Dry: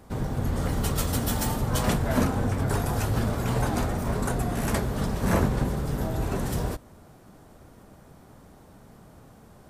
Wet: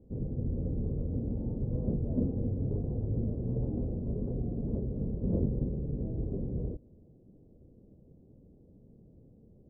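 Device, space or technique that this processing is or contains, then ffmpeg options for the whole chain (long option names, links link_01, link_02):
under water: -af "lowpass=frequency=420:width=0.5412,lowpass=frequency=420:width=1.3066,equalizer=frequency=510:width_type=o:width=0.37:gain=5.5,volume=-5.5dB"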